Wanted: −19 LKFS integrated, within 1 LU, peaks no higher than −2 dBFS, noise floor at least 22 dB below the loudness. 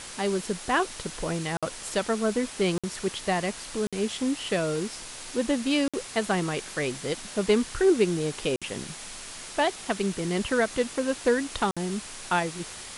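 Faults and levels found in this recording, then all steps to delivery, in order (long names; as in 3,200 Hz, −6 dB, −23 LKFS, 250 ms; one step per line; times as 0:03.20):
number of dropouts 6; longest dropout 56 ms; background noise floor −41 dBFS; target noise floor −50 dBFS; integrated loudness −28.0 LKFS; sample peak −10.0 dBFS; target loudness −19.0 LKFS
→ repair the gap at 0:01.57/0:02.78/0:03.87/0:05.88/0:08.56/0:11.71, 56 ms
noise reduction from a noise print 9 dB
level +9 dB
brickwall limiter −2 dBFS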